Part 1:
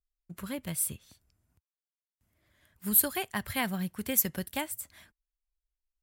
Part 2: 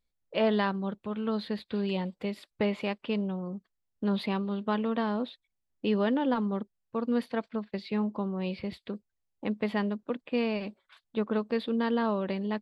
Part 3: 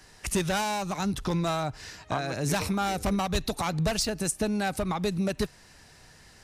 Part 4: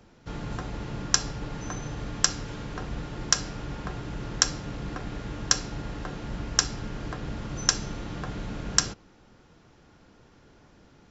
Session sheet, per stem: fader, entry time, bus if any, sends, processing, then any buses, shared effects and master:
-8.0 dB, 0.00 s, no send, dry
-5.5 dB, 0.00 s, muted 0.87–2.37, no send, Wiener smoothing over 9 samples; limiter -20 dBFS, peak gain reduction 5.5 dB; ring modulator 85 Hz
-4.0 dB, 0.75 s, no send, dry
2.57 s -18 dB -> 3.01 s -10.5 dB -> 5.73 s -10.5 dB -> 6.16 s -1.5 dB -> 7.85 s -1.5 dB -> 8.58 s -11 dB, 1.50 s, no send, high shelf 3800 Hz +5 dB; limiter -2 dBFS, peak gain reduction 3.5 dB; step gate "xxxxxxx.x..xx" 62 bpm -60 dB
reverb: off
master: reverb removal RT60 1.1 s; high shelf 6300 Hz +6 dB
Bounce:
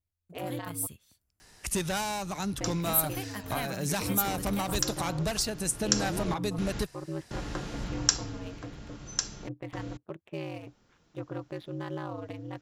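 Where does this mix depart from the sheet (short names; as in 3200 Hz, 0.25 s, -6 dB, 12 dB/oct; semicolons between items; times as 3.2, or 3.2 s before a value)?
stem 3: entry 0.75 s -> 1.40 s; master: missing reverb removal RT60 1.1 s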